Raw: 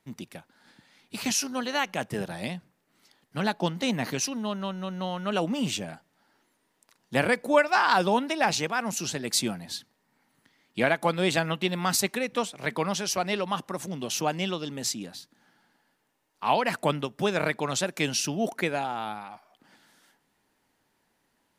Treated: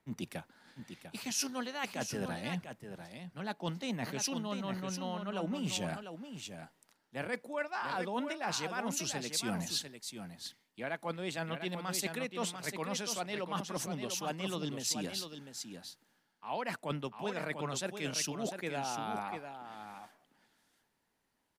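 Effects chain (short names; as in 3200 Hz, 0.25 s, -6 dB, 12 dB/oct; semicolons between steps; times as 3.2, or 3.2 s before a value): reverse; compressor 8:1, threshold -38 dBFS, peak gain reduction 22 dB; reverse; echo 0.697 s -6.5 dB; three-band expander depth 40%; gain +3.5 dB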